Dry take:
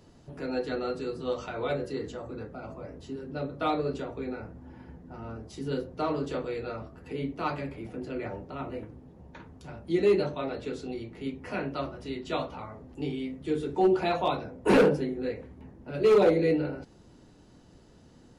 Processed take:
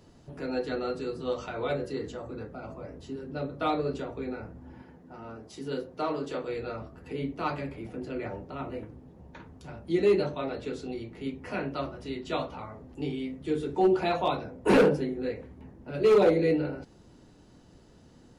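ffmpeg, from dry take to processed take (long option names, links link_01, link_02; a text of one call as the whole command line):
ffmpeg -i in.wav -filter_complex "[0:a]asettb=1/sr,asplit=3[link_01][link_02][link_03];[link_01]atrim=end=4.824[link_04];[link_02]atrim=start=4.82:end=6.48,asetpts=PTS-STARTPTS,afade=type=in:duration=0.004:curve=qsin,afade=type=out:start_time=1.656:duration=0.004:curve=qsin,highpass=frequency=250:poles=1[link_05];[link_03]atrim=start=6.476[link_06];[link_04][link_05]acrossfade=duration=0.004:curve1=hsin:curve2=qsin[link_07];[link_07][link_06]acrossfade=duration=0.004:curve1=qsin:curve2=hsin" out.wav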